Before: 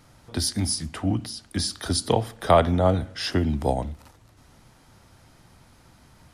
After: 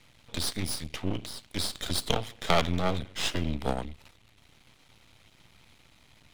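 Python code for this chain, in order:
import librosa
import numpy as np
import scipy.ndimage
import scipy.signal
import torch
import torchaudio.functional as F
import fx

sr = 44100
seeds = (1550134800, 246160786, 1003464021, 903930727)

y = fx.band_shelf(x, sr, hz=2900.0, db=11.5, octaves=1.2)
y = np.maximum(y, 0.0)
y = F.gain(torch.from_numpy(y), -3.5).numpy()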